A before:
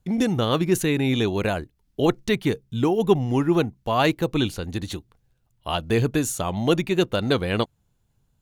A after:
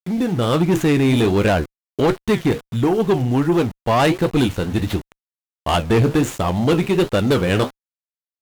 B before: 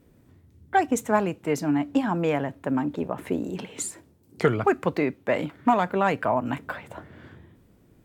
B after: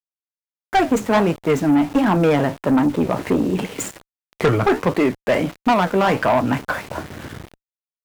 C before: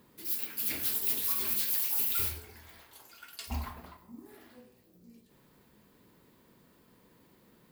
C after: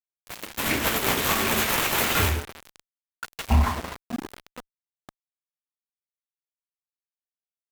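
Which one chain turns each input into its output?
median filter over 9 samples; level rider gain up to 12.5 dB; flange 1.4 Hz, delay 9.1 ms, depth 9 ms, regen -62%; small samples zeroed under -38.5 dBFS; valve stage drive 17 dB, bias 0.2; peak normalisation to -9 dBFS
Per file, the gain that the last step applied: +6.5 dB, +6.0 dB, +9.5 dB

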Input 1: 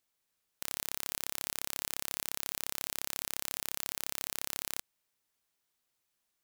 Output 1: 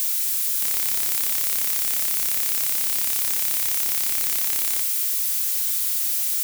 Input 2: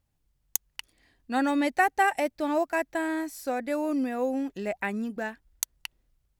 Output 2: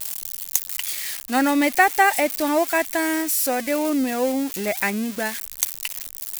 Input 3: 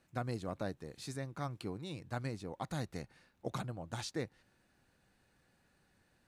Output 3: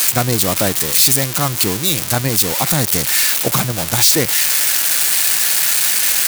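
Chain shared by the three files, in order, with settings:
zero-crossing glitches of -24.5 dBFS; dynamic bell 2.2 kHz, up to +5 dB, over -50 dBFS, Q 3.4; peak normalisation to -1.5 dBFS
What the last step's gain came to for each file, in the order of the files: +5.0 dB, +6.0 dB, +20.5 dB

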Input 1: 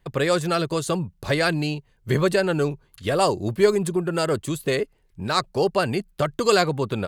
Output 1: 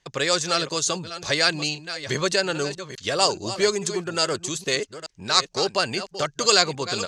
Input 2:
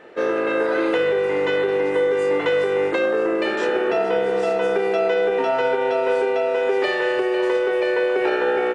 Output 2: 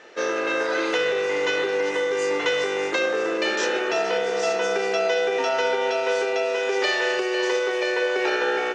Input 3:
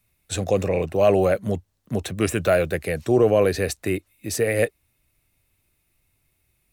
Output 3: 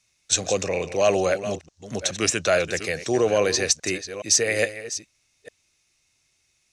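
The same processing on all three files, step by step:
chunks repeated in reverse 422 ms, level -12 dB; four-pole ladder low-pass 6.8 kHz, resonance 60%; tilt EQ +2.5 dB/octave; normalise loudness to -23 LUFS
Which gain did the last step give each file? +9.0 dB, +8.5 dB, +10.0 dB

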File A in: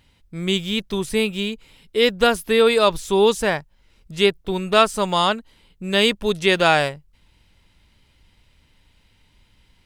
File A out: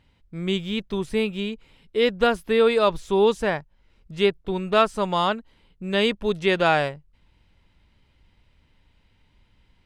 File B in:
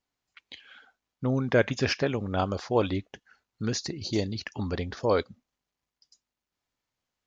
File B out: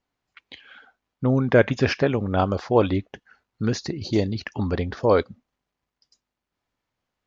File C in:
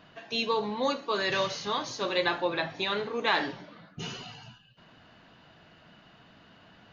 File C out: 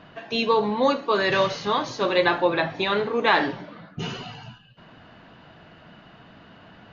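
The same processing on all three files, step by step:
low-pass 2.3 kHz 6 dB/octave; normalise loudness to -23 LUFS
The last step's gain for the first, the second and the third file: -2.5 dB, +6.5 dB, +8.5 dB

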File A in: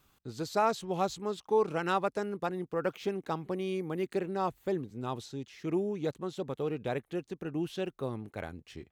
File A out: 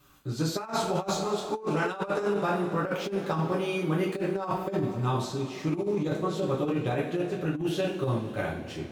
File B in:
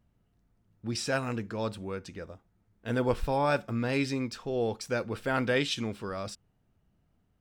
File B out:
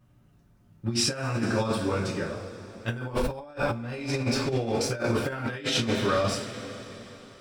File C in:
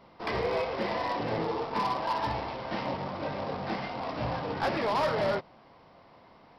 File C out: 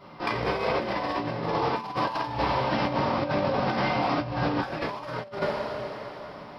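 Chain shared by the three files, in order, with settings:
two-slope reverb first 0.39 s, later 3.8 s, from -18 dB, DRR -6 dB; compressor with a negative ratio -27 dBFS, ratio -0.5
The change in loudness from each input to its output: +4.5 LU, +2.5 LU, +3.5 LU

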